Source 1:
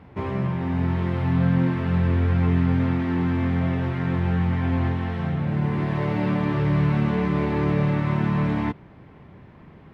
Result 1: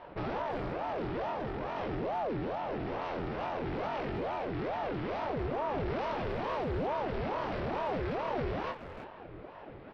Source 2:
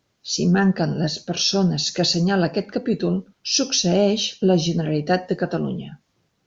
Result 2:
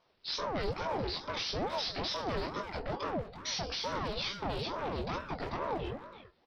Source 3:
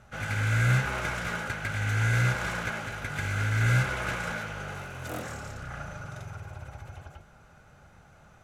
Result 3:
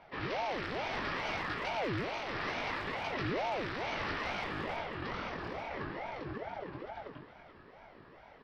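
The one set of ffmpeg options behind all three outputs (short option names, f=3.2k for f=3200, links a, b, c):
-filter_complex "[0:a]acompressor=threshold=-24dB:ratio=6,aresample=11025,asoftclip=type=hard:threshold=-32dB,aresample=44100,asplit=2[a][b];[b]adelay=21,volume=-4dB[c];[a][c]amix=inputs=2:normalize=0,asplit=2[d][e];[e]adelay=330,highpass=300,lowpass=3.4k,asoftclip=type=hard:threshold=-32dB,volume=-7dB[f];[d][f]amix=inputs=2:normalize=0,aeval=exprs='val(0)*sin(2*PI*510*n/s+510*0.6/2.3*sin(2*PI*2.3*n/s))':c=same"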